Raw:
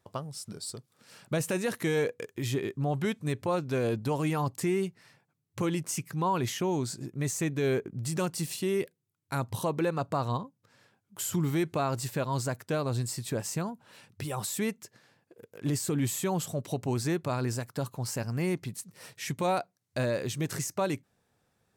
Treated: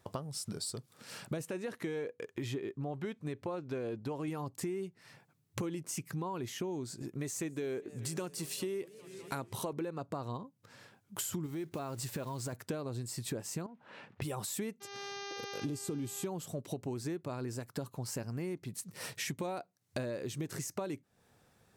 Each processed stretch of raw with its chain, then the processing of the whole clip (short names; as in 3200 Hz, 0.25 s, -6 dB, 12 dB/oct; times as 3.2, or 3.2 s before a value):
1.45–4.28 LPF 3200 Hz 6 dB/oct + low shelf 420 Hz -4.5 dB
7.02–9.73 low shelf 160 Hz -9.5 dB + warbling echo 0.201 s, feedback 79%, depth 218 cents, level -23.5 dB
11.46–12.53 block floating point 5-bit + compressor 4:1, threshold -31 dBFS
13.66–14.22 CVSD 64 kbps + BPF 180–2200 Hz + compressor 10:1, threshold -42 dBFS
14.8–16.25 bell 1900 Hz -12.5 dB 0.33 oct + buzz 400 Hz, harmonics 16, -48 dBFS -3 dB/oct + brick-wall FIR low-pass 14000 Hz
whole clip: dynamic EQ 340 Hz, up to +6 dB, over -41 dBFS, Q 1.1; compressor 8:1, threshold -42 dBFS; gain +6 dB